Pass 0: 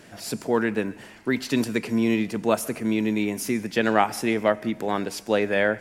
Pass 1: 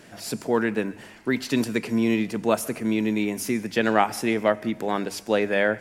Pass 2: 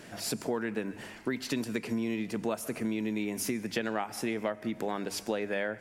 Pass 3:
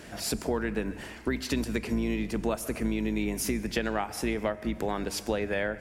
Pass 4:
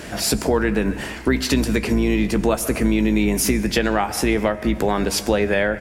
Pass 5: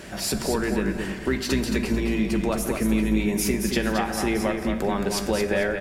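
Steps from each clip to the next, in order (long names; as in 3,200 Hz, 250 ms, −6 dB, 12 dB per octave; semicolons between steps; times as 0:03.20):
mains-hum notches 50/100 Hz
downward compressor 6 to 1, threshold −29 dBFS, peak gain reduction 14.5 dB
sub-octave generator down 2 octaves, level −5 dB; on a send at −21 dB: convolution reverb RT60 1.6 s, pre-delay 19 ms; on the sum: level +2.5 dB
in parallel at −1.5 dB: brickwall limiter −23.5 dBFS, peak gain reduction 9 dB; on the sum: double-tracking delay 15 ms −12 dB; level +6.5 dB
repeating echo 222 ms, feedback 29%, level −6 dB; rectangular room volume 2,500 cubic metres, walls furnished, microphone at 1.1 metres; level −6.5 dB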